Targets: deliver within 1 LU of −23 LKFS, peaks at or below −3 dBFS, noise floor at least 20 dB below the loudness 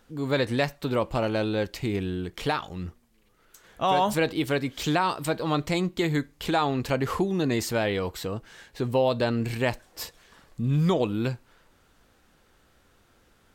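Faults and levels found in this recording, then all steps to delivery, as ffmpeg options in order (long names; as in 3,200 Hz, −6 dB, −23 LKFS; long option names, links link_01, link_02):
integrated loudness −27.0 LKFS; sample peak −12.5 dBFS; target loudness −23.0 LKFS
→ -af "volume=4dB"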